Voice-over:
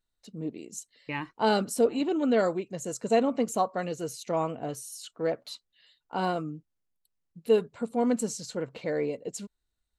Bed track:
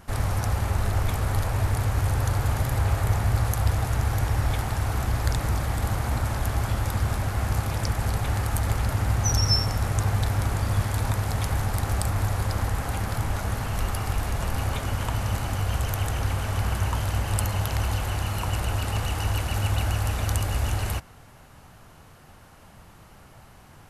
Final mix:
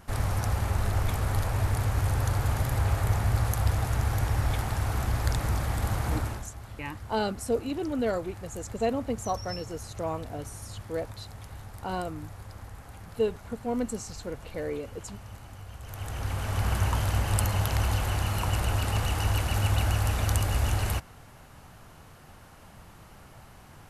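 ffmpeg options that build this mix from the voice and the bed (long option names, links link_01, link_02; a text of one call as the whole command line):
ffmpeg -i stem1.wav -i stem2.wav -filter_complex "[0:a]adelay=5700,volume=-4dB[link_01];[1:a]volume=14.5dB,afade=type=out:start_time=6.15:duration=0.33:silence=0.177828,afade=type=in:start_time=15.81:duration=0.95:silence=0.141254[link_02];[link_01][link_02]amix=inputs=2:normalize=0" out.wav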